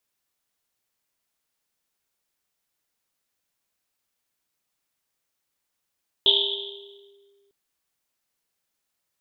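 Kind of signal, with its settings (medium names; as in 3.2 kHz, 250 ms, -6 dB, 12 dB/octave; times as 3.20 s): Risset drum length 1.25 s, pitch 400 Hz, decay 2.09 s, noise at 3.4 kHz, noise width 670 Hz, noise 75%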